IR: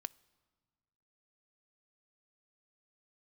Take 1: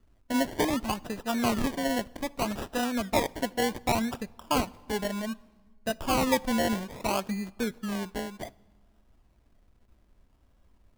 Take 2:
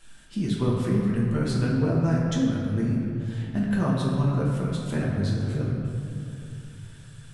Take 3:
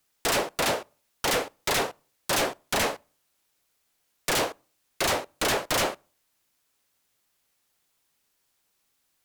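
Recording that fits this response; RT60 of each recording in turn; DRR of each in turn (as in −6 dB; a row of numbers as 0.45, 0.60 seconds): 1; non-exponential decay, 2.9 s, non-exponential decay; 15.5, −5.5, 23.0 decibels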